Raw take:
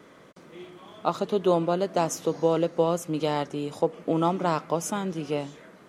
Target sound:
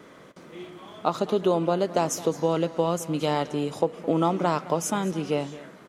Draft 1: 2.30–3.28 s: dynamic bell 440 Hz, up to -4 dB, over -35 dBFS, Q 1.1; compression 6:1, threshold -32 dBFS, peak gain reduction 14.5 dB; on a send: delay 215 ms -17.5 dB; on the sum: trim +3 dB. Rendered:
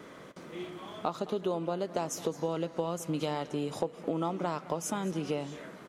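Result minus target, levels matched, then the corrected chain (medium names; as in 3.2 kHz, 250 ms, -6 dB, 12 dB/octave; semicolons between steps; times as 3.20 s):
compression: peak gain reduction +9.5 dB
2.30–3.28 s: dynamic bell 440 Hz, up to -4 dB, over -35 dBFS, Q 1.1; compression 6:1, threshold -20.5 dBFS, peak gain reduction 4.5 dB; on a send: delay 215 ms -17.5 dB; on the sum: trim +3 dB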